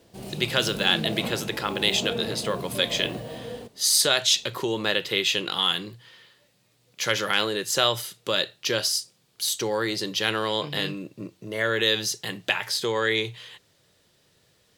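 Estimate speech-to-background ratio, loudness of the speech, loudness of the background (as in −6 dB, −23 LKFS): 10.0 dB, −24.5 LKFS, −34.5 LKFS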